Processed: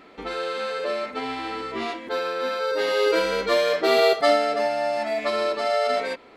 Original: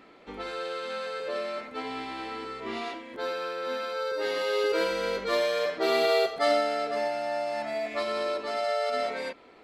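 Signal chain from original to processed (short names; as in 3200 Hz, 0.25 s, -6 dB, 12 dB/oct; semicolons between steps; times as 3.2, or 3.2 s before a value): time stretch by phase-locked vocoder 0.66×; gain +6 dB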